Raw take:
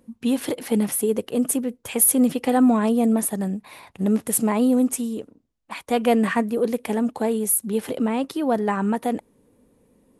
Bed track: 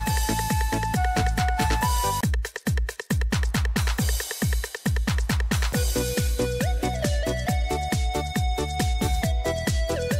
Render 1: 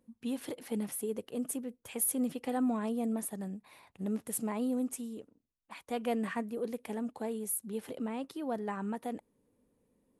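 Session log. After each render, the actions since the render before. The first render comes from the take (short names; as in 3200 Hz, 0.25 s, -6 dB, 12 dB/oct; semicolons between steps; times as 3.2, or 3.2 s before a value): gain -14 dB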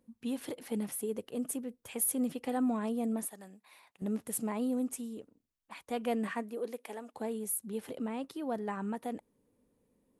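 3.28–4.02 HPF 970 Hz 6 dB/oct; 6.27–7.13 HPF 190 Hz -> 570 Hz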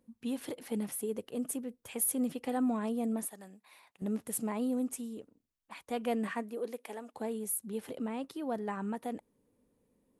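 nothing audible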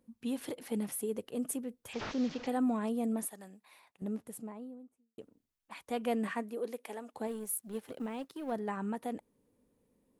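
1.93–2.47 delta modulation 32 kbps, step -40.5 dBFS; 3.5–5.18 studio fade out; 7.27–8.52 G.711 law mismatch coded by A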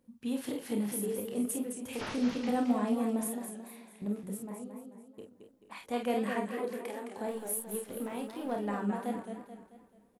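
on a send: early reflections 29 ms -6 dB, 49 ms -6 dB; on the sum: warbling echo 0.218 s, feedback 44%, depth 132 cents, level -7 dB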